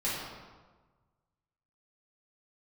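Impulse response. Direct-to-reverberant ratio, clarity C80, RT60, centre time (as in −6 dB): −10.0 dB, 2.0 dB, 1.3 s, 91 ms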